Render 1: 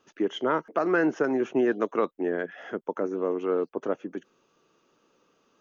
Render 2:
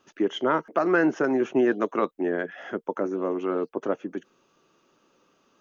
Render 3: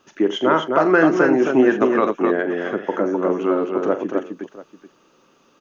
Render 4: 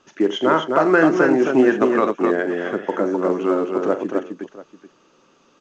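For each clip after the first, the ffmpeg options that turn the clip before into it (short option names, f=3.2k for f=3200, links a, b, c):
-af "bandreject=f=460:w=12,volume=2.5dB"
-af "aecho=1:1:43|82|259|687:0.266|0.168|0.596|0.126,volume=6dB"
-ar 16000 -c:a pcm_alaw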